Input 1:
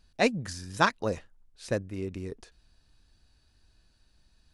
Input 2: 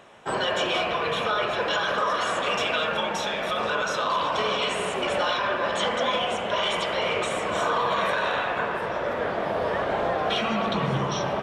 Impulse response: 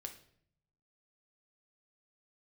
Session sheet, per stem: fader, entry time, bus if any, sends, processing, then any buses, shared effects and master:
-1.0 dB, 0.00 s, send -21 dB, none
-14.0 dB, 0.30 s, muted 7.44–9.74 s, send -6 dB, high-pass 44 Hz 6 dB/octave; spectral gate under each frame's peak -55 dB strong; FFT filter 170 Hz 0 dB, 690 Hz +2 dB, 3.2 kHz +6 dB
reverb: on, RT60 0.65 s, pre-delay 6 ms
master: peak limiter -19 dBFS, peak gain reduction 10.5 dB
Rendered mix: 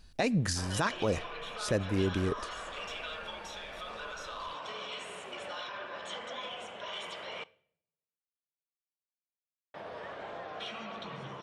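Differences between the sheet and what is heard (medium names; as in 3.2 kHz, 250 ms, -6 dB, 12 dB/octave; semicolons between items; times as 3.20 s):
stem 1 -1.0 dB -> +6.0 dB; stem 2 -14.0 dB -> -21.5 dB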